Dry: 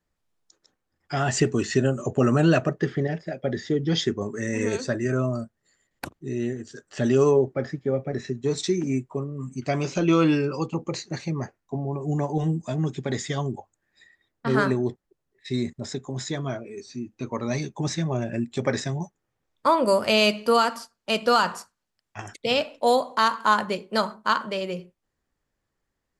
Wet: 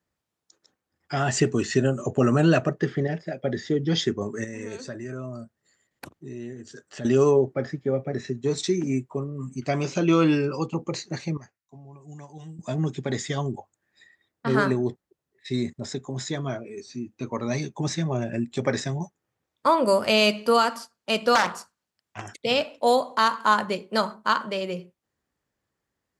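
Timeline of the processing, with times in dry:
4.44–7.05 compressor 2:1, threshold -39 dBFS
11.37–12.59 passive tone stack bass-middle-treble 5-5-5
21.35–22.21 Doppler distortion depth 0.58 ms
whole clip: HPF 72 Hz

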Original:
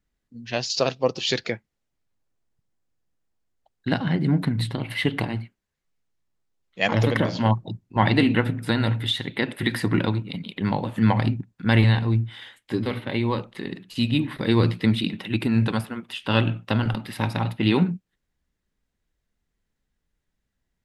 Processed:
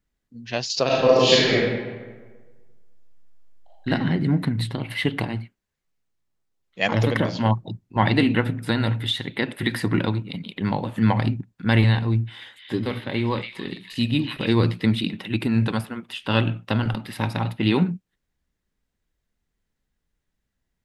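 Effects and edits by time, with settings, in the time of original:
0.86–3.88 reverb throw, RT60 1.4 s, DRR -8.5 dB
11.99–14.53 delay with a stepping band-pass 0.283 s, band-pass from 2600 Hz, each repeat 0.7 oct, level -2 dB

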